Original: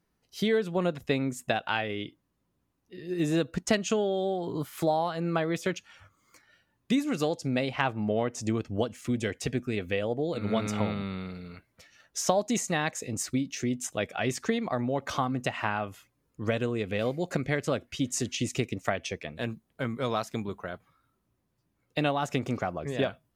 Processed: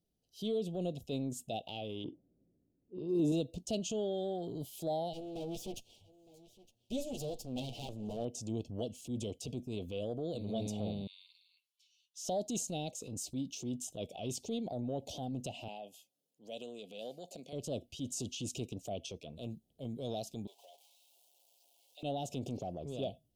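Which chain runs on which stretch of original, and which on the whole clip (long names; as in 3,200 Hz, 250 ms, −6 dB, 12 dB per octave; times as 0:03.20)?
0:02.04–0:03.32: downward compressor 4 to 1, threshold −29 dBFS + parametric band 350 Hz +12 dB 2.8 octaves + low-pass that shuts in the quiet parts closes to 440 Hz, open at −23.5 dBFS
0:05.13–0:08.25: lower of the sound and its delayed copy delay 8.5 ms + single-tap delay 912 ms −20 dB
0:11.07–0:12.25: linear-phase brick-wall high-pass 970 Hz + high-shelf EQ 7,500 Hz −7.5 dB
0:15.68–0:17.53: high-pass filter 230 Hz 24 dB per octave + parametric band 320 Hz −12.5 dB 1.2 octaves
0:20.47–0:22.03: converter with a step at zero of −42 dBFS + four-pole ladder high-pass 770 Hz, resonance 30% + comb filter 7.2 ms, depth 44%
whole clip: elliptic band-stop filter 720–3,000 Hz, stop band 50 dB; transient designer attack −6 dB, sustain +4 dB; level −7 dB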